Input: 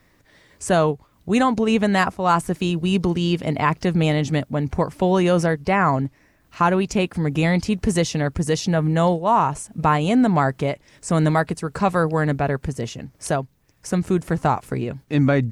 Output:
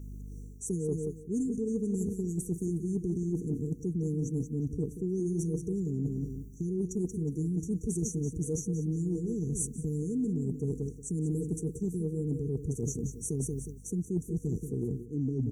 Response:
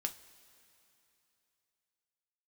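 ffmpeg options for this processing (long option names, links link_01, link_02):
-filter_complex "[0:a]asplit=2[link_01][link_02];[link_02]aecho=0:1:182|364|546|728:0.282|0.093|0.0307|0.0101[link_03];[link_01][link_03]amix=inputs=2:normalize=0,aeval=exprs='val(0)+0.00631*(sin(2*PI*50*n/s)+sin(2*PI*2*50*n/s)/2+sin(2*PI*3*50*n/s)/3+sin(2*PI*4*50*n/s)/4+sin(2*PI*5*50*n/s)/5)':channel_layout=same,afftfilt=real='re*(1-between(b*sr/4096,480,5700))':imag='im*(1-between(b*sr/4096,480,5700))':win_size=4096:overlap=0.75,areverse,acompressor=threshold=-33dB:ratio=6,areverse,adynamicequalizer=threshold=0.002:dfrequency=6100:dqfactor=0.7:tfrequency=6100:tqfactor=0.7:attack=5:release=100:ratio=0.375:range=2:mode=boostabove:tftype=highshelf,volume=3dB"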